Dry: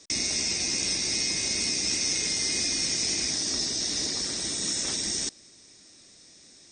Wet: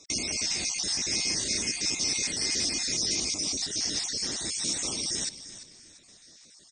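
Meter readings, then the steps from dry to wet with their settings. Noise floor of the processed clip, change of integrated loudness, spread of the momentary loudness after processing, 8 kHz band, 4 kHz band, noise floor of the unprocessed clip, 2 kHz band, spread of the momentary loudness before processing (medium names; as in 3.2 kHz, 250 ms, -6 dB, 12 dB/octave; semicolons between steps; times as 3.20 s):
-55 dBFS, -1.5 dB, 4 LU, -1.5 dB, -1.5 dB, -54 dBFS, -2.0 dB, 3 LU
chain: random holes in the spectrogram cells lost 32%; frequency-shifting echo 342 ms, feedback 32%, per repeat -52 Hz, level -14 dB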